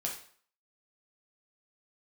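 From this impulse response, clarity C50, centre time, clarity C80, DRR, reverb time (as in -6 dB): 7.0 dB, 26 ms, 11.0 dB, -2.0 dB, 0.50 s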